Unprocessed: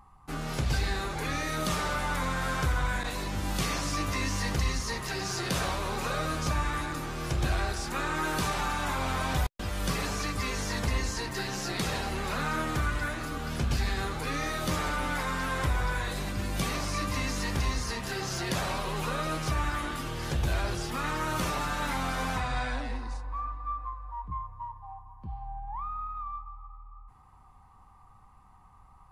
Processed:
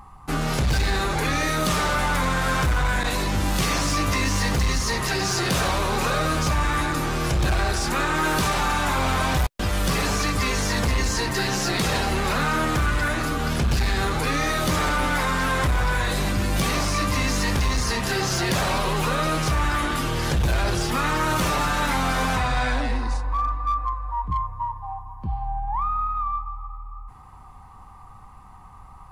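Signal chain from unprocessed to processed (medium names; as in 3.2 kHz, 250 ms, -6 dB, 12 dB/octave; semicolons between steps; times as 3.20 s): in parallel at +2 dB: peak limiter -27 dBFS, peak gain reduction 9.5 dB; on the sum: hard clipper -21 dBFS, distortion -17 dB; trim +4 dB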